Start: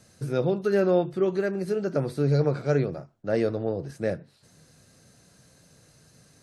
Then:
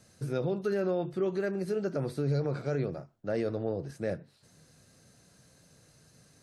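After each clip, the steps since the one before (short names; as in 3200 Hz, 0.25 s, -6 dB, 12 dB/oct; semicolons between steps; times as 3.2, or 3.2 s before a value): limiter -18 dBFS, peak gain reduction 7 dB; gain -3.5 dB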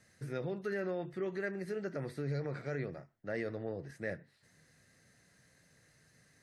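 bell 1900 Hz +15 dB 0.46 oct; gain -7.5 dB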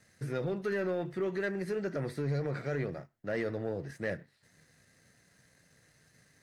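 sample leveller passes 1; gain +1.5 dB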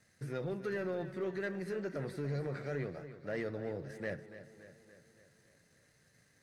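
warbling echo 0.285 s, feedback 58%, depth 52 cents, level -13 dB; gain -4.5 dB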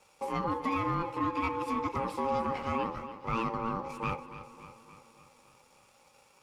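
ring modulator 680 Hz; gain +9 dB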